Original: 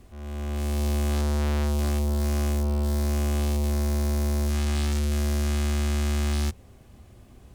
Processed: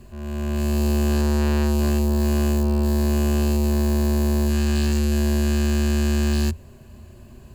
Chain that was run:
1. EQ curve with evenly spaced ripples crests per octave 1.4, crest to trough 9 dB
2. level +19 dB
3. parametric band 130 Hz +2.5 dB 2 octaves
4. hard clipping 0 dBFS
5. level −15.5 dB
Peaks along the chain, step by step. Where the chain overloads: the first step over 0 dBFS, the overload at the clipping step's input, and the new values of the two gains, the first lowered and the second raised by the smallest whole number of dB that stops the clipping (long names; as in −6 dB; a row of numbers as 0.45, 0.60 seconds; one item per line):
−14.0, +5.0, +5.5, 0.0, −15.5 dBFS
step 2, 5.5 dB
step 2 +13 dB, step 5 −9.5 dB